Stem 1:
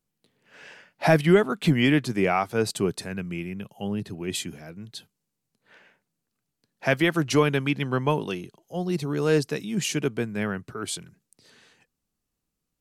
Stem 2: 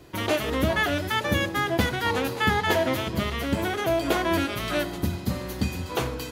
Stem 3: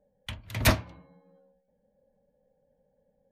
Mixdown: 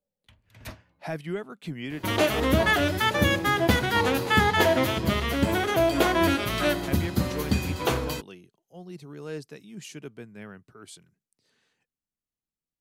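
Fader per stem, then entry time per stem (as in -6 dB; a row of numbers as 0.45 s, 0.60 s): -14.5 dB, +2.0 dB, -19.0 dB; 0.00 s, 1.90 s, 0.00 s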